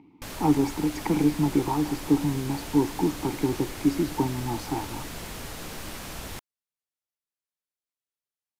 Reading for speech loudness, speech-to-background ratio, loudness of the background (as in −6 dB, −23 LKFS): −26.5 LKFS, 11.0 dB, −37.5 LKFS